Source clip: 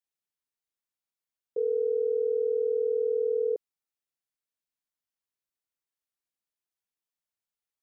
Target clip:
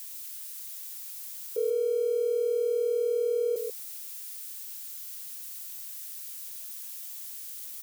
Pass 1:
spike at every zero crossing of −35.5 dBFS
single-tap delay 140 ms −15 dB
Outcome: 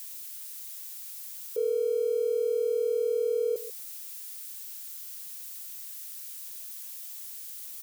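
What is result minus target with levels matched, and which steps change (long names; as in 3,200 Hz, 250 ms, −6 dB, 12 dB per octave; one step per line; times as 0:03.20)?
echo-to-direct −8.5 dB
change: single-tap delay 140 ms −6.5 dB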